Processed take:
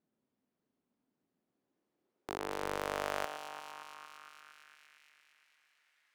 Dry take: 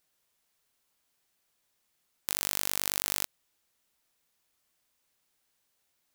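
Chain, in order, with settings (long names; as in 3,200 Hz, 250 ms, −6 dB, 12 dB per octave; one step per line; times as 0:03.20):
delay that swaps between a low-pass and a high-pass 115 ms, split 2,300 Hz, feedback 81%, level −7 dB
band-pass filter sweep 240 Hz → 1,900 Hz, 0:01.41–0:05.00
highs frequency-modulated by the lows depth 0.48 ms
level +12 dB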